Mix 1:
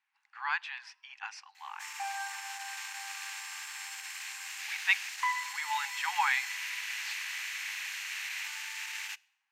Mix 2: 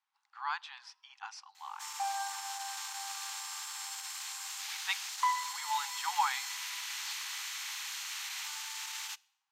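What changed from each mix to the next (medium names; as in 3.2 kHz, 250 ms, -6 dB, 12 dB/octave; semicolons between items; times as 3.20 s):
background +3.0 dB; master: add high-order bell 2.1 kHz -10 dB 1 oct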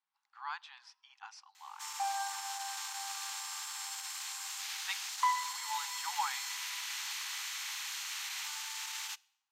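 speech -5.0 dB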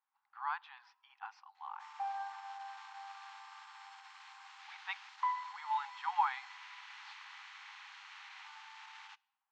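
speech +8.0 dB; master: add tape spacing loss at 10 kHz 42 dB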